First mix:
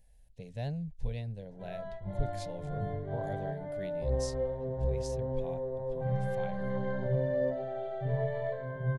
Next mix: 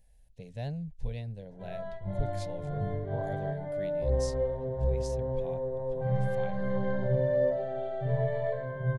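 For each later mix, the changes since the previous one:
background: send +10.5 dB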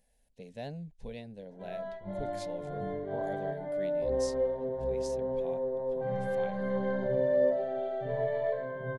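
master: add low shelf with overshoot 160 Hz −12 dB, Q 1.5

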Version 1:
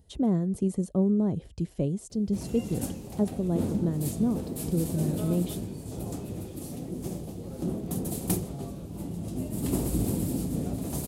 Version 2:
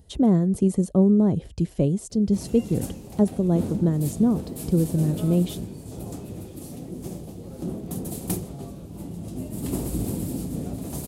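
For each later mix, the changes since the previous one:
speech +6.5 dB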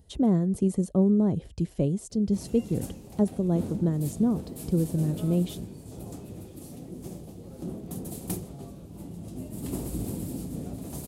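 speech −4.0 dB
background −5.0 dB

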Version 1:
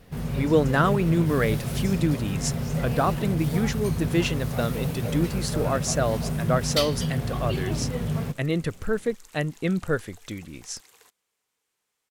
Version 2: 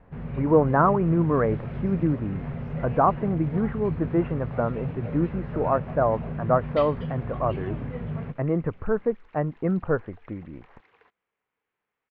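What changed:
speech: add low-pass with resonance 1,000 Hz, resonance Q 2.2
first sound −4.5 dB
master: add low-pass filter 2,400 Hz 24 dB per octave

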